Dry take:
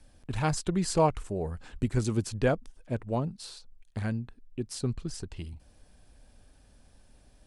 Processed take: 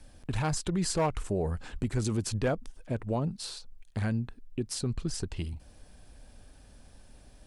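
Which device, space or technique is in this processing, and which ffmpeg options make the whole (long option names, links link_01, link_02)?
clipper into limiter: -af "asoftclip=type=hard:threshold=-18.5dB,alimiter=level_in=2dB:limit=-24dB:level=0:latency=1:release=82,volume=-2dB,volume=4.5dB"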